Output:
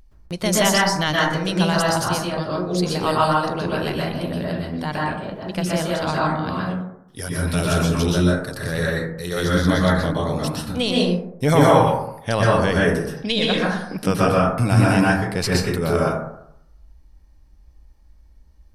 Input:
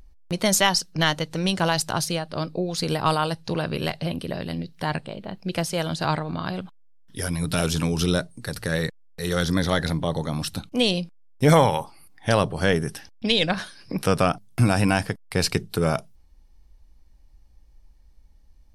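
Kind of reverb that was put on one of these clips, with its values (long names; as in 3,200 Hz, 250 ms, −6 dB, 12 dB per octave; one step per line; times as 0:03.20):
dense smooth reverb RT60 0.76 s, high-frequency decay 0.3×, pre-delay 110 ms, DRR −5 dB
level −2 dB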